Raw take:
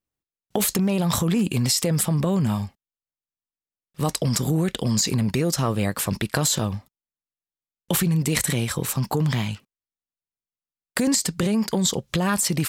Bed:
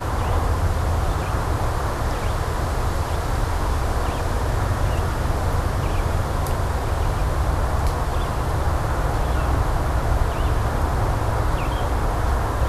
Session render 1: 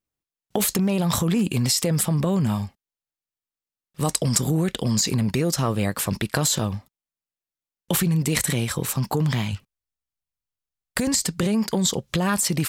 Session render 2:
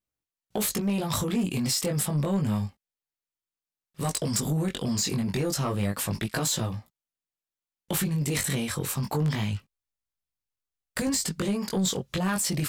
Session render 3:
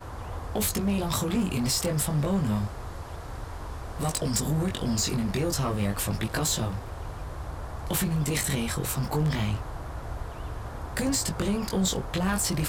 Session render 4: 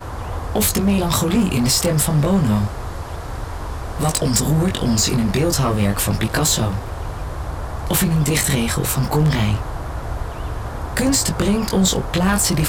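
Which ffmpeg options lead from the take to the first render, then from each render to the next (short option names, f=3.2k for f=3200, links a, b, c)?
-filter_complex "[0:a]asettb=1/sr,asplit=3[a][b][c];[a]atrim=end=4.014[d];[b]atrim=start=4.01:end=4.41,asetpts=PTS-STARTPTS,afade=t=in:d=0.004:c=qsin,afade=t=out:st=0.396:d=0.004:c=qsin,equalizer=f=8.4k:w=1.6:g=7[e];[c]atrim=start=4.406[f];[d][e]acrossfade=d=0.004:c1=hsin:c2=qsin[g];[g][f]acrossfade=d=0.004:c1=qsin:c2=hsin,asplit=3[h][i][j];[h]afade=t=out:st=9.52:d=0.02[k];[i]asubboost=boost=5:cutoff=110,afade=t=in:st=9.52:d=0.02,afade=t=out:st=11.23:d=0.02[l];[j]afade=t=in:st=11.23:d=0.02[m];[k][l][m]amix=inputs=3:normalize=0"
-af "flanger=delay=17:depth=4.3:speed=0.29,asoftclip=type=tanh:threshold=-19.5dB"
-filter_complex "[1:a]volume=-15dB[a];[0:a][a]amix=inputs=2:normalize=0"
-af "volume=9.5dB"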